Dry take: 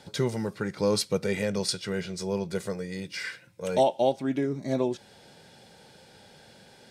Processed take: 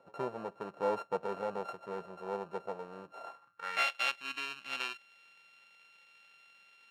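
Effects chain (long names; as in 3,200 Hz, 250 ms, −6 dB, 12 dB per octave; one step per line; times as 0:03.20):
samples sorted by size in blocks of 32 samples
band-pass filter sweep 630 Hz → 2,700 Hz, 0:03.21–0:03.88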